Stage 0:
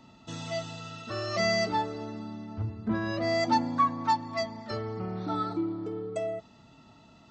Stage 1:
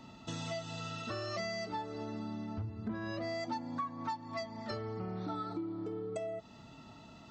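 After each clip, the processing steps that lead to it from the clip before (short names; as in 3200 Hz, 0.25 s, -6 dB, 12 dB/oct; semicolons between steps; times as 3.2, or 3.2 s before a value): compressor 5:1, threshold -39 dBFS, peak gain reduction 17 dB; gain +2 dB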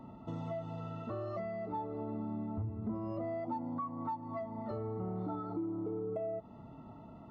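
in parallel at -0.5 dB: limiter -36 dBFS, peak gain reduction 9.5 dB; on the sum: polynomial smoothing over 65 samples; gain -2.5 dB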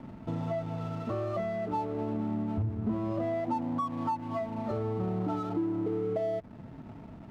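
backlash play -49 dBFS; gain +7 dB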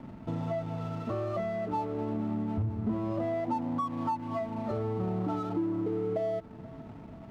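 thinning echo 0.483 s, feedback 75%, high-pass 430 Hz, level -20 dB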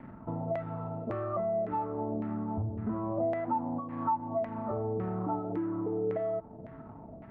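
LFO low-pass saw down 1.8 Hz 540–2000 Hz; gain -3 dB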